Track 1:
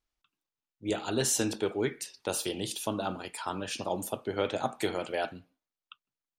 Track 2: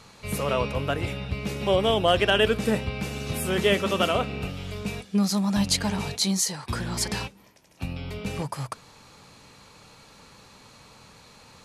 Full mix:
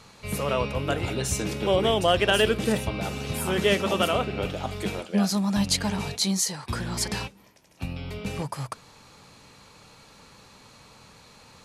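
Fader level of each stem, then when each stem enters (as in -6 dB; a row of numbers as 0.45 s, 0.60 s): -2.0 dB, -0.5 dB; 0.00 s, 0.00 s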